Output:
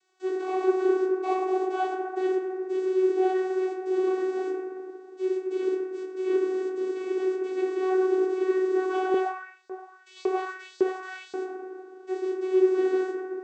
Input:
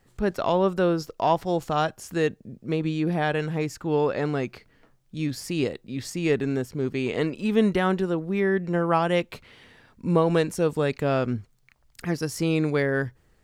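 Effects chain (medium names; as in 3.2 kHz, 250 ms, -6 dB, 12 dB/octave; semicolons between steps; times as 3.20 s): dead-time distortion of 0.23 ms; tone controls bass +7 dB, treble -4 dB; word length cut 6-bit, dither triangular; gate -27 dBFS, range -19 dB; reverberation RT60 2.4 s, pre-delay 6 ms, DRR -5 dB; vocoder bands 16, saw 374 Hz; 9.14–11.34 s: LFO high-pass saw up 1.8 Hz 400–4900 Hz; trim -9 dB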